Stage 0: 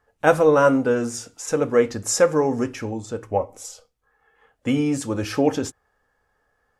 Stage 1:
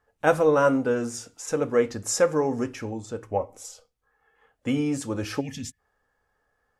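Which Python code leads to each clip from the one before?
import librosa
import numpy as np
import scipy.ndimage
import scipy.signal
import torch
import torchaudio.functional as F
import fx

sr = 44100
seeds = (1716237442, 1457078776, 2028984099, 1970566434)

y = fx.spec_box(x, sr, start_s=5.4, length_s=0.39, low_hz=260.0, high_hz=1700.0, gain_db=-23)
y = F.gain(torch.from_numpy(y), -4.0).numpy()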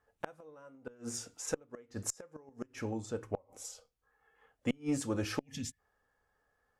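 y = fx.gate_flip(x, sr, shuts_db=-16.0, range_db=-30)
y = fx.cheby_harmonics(y, sr, harmonics=(4, 6), levels_db=(-22, -31), full_scale_db=-14.5)
y = F.gain(torch.from_numpy(y), -4.5).numpy()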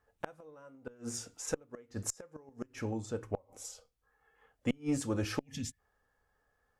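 y = fx.low_shelf(x, sr, hz=110.0, db=5.0)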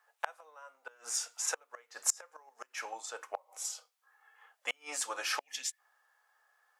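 y = scipy.signal.sosfilt(scipy.signal.butter(4, 760.0, 'highpass', fs=sr, output='sos'), x)
y = F.gain(torch.from_numpy(y), 7.5).numpy()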